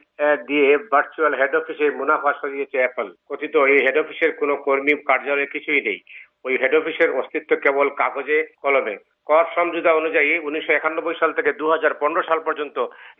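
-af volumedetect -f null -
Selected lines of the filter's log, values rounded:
mean_volume: -20.3 dB
max_volume: -3.8 dB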